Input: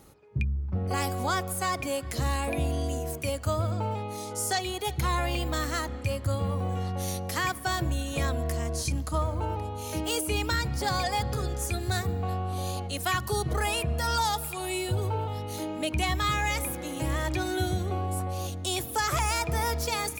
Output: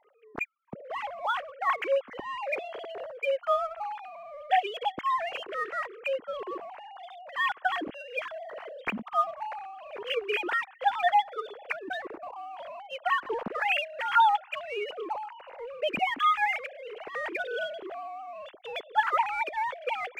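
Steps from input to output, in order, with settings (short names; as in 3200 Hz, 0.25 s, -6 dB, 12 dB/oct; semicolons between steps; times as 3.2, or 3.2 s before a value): sine-wave speech; in parallel at -7.5 dB: crossover distortion -37.5 dBFS; on the sum: gain -4.5 dB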